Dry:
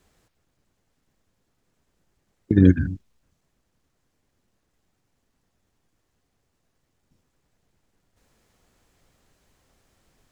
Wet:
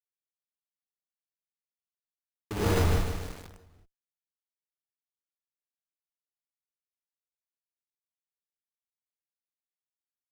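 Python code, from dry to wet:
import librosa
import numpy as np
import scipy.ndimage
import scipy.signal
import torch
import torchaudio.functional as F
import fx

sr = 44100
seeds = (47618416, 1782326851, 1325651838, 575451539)

p1 = scipy.signal.sosfilt(scipy.signal.butter(4, 1600.0, 'lowpass', fs=sr, output='sos'), x)
p2 = fx.low_shelf_res(p1, sr, hz=350.0, db=-10.0, q=3.0)
p3 = fx.over_compress(p2, sr, threshold_db=-27.0, ratio=-0.5)
p4 = p2 + (p3 * 10.0 ** (-1.0 / 20.0))
p5 = fx.quant_dither(p4, sr, seeds[0], bits=6, dither='none')
p6 = fx.schmitt(p5, sr, flips_db=-25.5)
p7 = fx.echo_feedback(p6, sr, ms=273, feedback_pct=43, wet_db=-19.5)
p8 = fx.rev_gated(p7, sr, seeds[1], gate_ms=160, shape='rising', drr_db=-7.5)
p9 = np.repeat(p8[::8], 8)[:len(p8)]
p10 = fx.echo_crushed(p9, sr, ms=153, feedback_pct=55, bits=7, wet_db=-7)
y = p10 * 10.0 ** (3.0 / 20.0)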